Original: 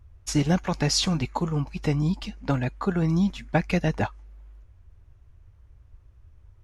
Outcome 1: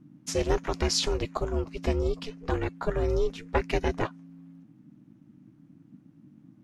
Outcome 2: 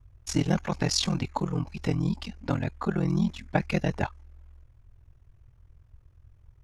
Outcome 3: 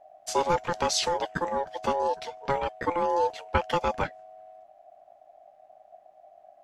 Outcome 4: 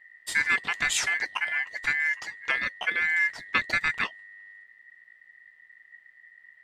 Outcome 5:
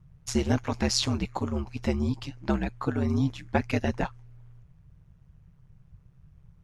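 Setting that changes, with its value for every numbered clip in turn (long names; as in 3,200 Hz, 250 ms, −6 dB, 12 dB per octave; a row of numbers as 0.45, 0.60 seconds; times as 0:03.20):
ring modulation, frequency: 220, 21, 690, 1,900, 69 Hertz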